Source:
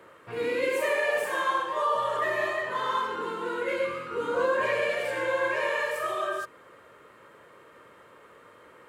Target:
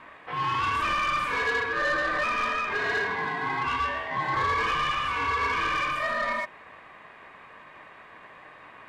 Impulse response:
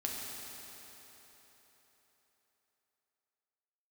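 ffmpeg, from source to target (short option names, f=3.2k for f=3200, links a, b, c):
-filter_complex "[0:a]aemphasis=mode=reproduction:type=50kf,aeval=exprs='val(0)*sin(2*PI*610*n/s)':c=same,asplit=2[a][b];[b]highpass=f=720:p=1,volume=19dB,asoftclip=type=tanh:threshold=-15dB[c];[a][c]amix=inputs=2:normalize=0,lowpass=f=4.2k:p=1,volume=-6dB,volume=-2.5dB"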